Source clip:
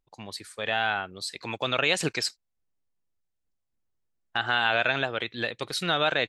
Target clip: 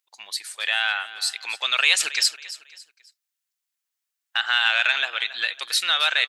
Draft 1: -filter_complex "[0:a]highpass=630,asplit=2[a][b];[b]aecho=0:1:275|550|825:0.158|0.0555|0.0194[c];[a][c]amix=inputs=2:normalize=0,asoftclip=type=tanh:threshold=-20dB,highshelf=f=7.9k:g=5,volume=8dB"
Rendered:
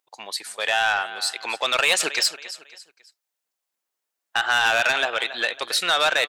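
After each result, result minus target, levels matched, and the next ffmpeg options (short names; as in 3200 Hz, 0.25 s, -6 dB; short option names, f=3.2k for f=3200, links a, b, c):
500 Hz band +13.0 dB; soft clip: distortion +16 dB
-filter_complex "[0:a]highpass=1.7k,asplit=2[a][b];[b]aecho=0:1:275|550|825:0.158|0.0555|0.0194[c];[a][c]amix=inputs=2:normalize=0,asoftclip=type=tanh:threshold=-20dB,highshelf=f=7.9k:g=5,volume=8dB"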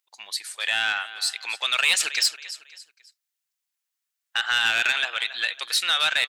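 soft clip: distortion +14 dB
-filter_complex "[0:a]highpass=1.7k,asplit=2[a][b];[b]aecho=0:1:275|550|825:0.158|0.0555|0.0194[c];[a][c]amix=inputs=2:normalize=0,asoftclip=type=tanh:threshold=-10.5dB,highshelf=f=7.9k:g=5,volume=8dB"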